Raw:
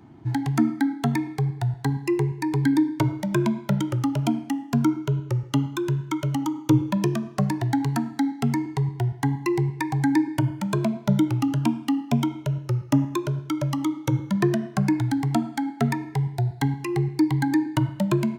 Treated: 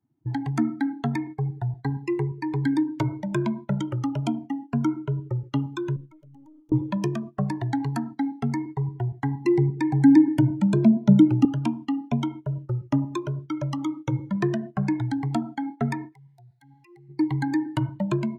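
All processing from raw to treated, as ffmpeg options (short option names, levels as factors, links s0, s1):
-filter_complex "[0:a]asettb=1/sr,asplit=3[s0][s1][s2];[s0]atrim=end=5.964[s3];[s1]atrim=start=5.96:end=6.72,asetpts=PTS-STARTPTS,afade=t=in:d=0.004:c=qsin,afade=t=out:st=0.756:d=0.004:c=qsin,acompressor=threshold=0.0355:ratio=16:attack=3.2:release=140:knee=1:detection=peak,aeval=exprs='(tanh(28.2*val(0)+0.7)-tanh(0.7))/28.2':c=same[s4];[s2]atrim=start=6.716[s5];[s3][s4]acrossfade=d=0.004:c1=hsin:c2=qsin[s6];[s6][s5]acrossfade=d=0.004:c1=qsin:c2=hsin,asettb=1/sr,asplit=3[s7][s8][s9];[s7]atrim=end=9.454[s10];[s8]atrim=start=9.45:end=11.45,asetpts=PTS-STARTPTS,afade=t=in:d=0.004:c=qsin,afade=t=out:st=1.996:d=0.004:c=qsin,equalizer=f=240:t=o:w=1.2:g=12.5,acrossover=split=490|3000[s11][s12][s13];[s12]acompressor=threshold=0.0398:ratio=1.5:attack=3.2:release=140:knee=2.83:detection=peak[s14];[s11][s14][s13]amix=inputs=3:normalize=0,bandreject=f=1100:w=6.4[s15];[s9]atrim=start=11.446[s16];[s10][s15]acrossfade=d=0.004:c1=hsin:c2=qsin[s17];[s17][s16]acrossfade=d=0.004:c1=qsin:c2=hsin,asettb=1/sr,asplit=3[s18][s19][s20];[s18]atrim=end=16.124[s21];[s19]atrim=start=16.12:end=17.09,asetpts=PTS-STARTPTS,afade=t=in:d=0.004:c=qsin,afade=t=out:st=0.966:d=0.004:c=qsin,tiltshelf=f=770:g=-8.5,acompressor=threshold=0.0224:ratio=12:attack=3.2:release=140:knee=1:detection=peak[s22];[s20]atrim=start=17.086[s23];[s21][s22]acrossfade=d=0.004:c1=hsin:c2=qsin[s24];[s24][s23]acrossfade=d=0.004:c1=qsin:c2=hsin,agate=range=0.316:threshold=0.0224:ratio=16:detection=peak,afftdn=nr=19:nf=-41,volume=0.708"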